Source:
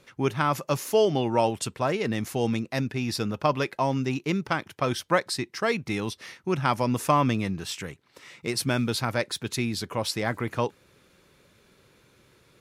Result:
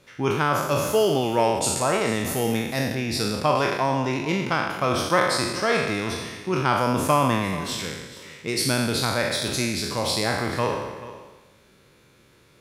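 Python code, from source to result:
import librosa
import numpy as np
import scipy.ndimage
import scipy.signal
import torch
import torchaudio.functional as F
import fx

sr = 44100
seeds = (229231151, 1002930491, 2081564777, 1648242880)

y = fx.spec_trails(x, sr, decay_s=1.18)
y = fx.high_shelf(y, sr, hz=8200.0, db=9.5, at=(1.64, 2.95))
y = y + 10.0 ** (-16.0 / 20.0) * np.pad(y, (int(435 * sr / 1000.0), 0))[:len(y)]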